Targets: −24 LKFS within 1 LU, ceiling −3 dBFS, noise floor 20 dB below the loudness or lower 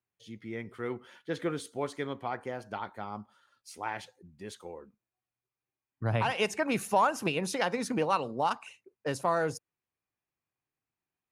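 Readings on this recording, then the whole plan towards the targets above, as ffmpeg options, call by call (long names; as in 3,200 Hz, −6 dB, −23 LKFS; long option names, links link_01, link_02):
integrated loudness −32.5 LKFS; sample peak −14.5 dBFS; target loudness −24.0 LKFS
→ -af "volume=8.5dB"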